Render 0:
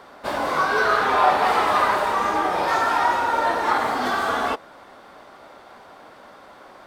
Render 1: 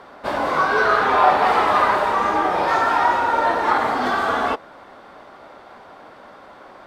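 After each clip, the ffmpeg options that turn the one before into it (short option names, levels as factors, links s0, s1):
-af "aemphasis=mode=reproduction:type=cd,volume=1.33"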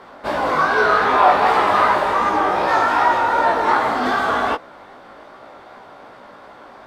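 -af "flanger=delay=15.5:depth=5.2:speed=2.6,volume=1.68"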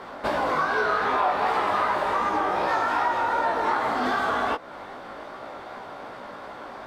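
-af "acompressor=threshold=0.0447:ratio=3,volume=1.33"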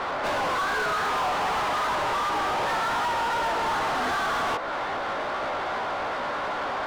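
-filter_complex "[0:a]asplit=2[s0][s1];[s1]highpass=f=720:p=1,volume=39.8,asoftclip=type=tanh:threshold=0.251[s2];[s0][s2]amix=inputs=2:normalize=0,lowpass=f=3000:p=1,volume=0.501,volume=0.398"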